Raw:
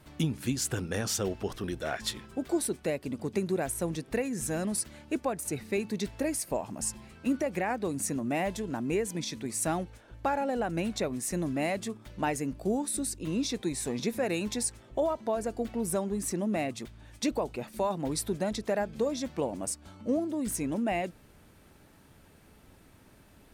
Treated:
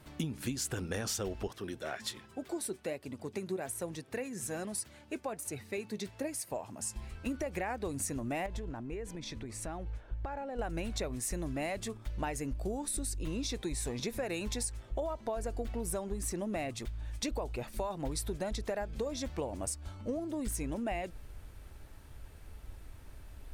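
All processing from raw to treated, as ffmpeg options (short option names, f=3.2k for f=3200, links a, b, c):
-filter_complex "[0:a]asettb=1/sr,asplit=3[a][b][c];[a]atrim=end=1.474[d];[b]atrim=start=1.47:end=6.96,asetpts=PTS-STARTPTS,afade=t=in:d=0.004:c=qsin,afade=t=out:st=5.486:d=0.004:c=qsin,highpass=f=100:w=0.5412,highpass=f=100:w=1.3066,flanger=delay=1:depth=4.3:regen=70:speed=1.2:shape=sinusoidal[e];[c]atrim=start=6.956[f];[d][e]acrossfade=d=0.004:c1=hsin:c2=qsin[g];[g][f]acrossfade=d=0.004:c1=qsin:c2=hsin,asettb=1/sr,asplit=3[h][i][j];[h]atrim=end=8.464[k];[i]atrim=start=8.46:end=10.59,asetpts=PTS-STARTPTS,afade=t=in:d=0.004:c=qsin,afade=t=out:st=2.126:d=0.004:c=qsin,lowpass=f=2.2k:p=1,acompressor=threshold=-36dB:ratio=5:attack=3.2:release=140:knee=1:detection=peak[l];[j]atrim=start=10.586[m];[k][l]acrossfade=d=0.004:c1=hsin:c2=qsin[n];[n][m]acrossfade=d=0.004:c1=qsin:c2=hsin,asubboost=boost=10:cutoff=58,acompressor=threshold=-32dB:ratio=6"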